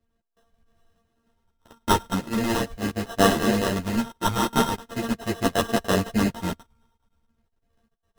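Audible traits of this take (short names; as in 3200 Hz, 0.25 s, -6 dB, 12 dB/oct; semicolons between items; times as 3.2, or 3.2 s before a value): a buzz of ramps at a fixed pitch in blocks of 64 samples; phasing stages 4, 0.4 Hz, lowest notch 660–1500 Hz; aliases and images of a low sample rate 2300 Hz, jitter 0%; a shimmering, thickened sound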